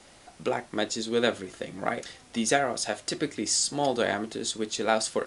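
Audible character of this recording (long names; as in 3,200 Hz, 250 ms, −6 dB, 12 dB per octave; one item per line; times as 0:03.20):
background noise floor −54 dBFS
spectral slope −2.5 dB per octave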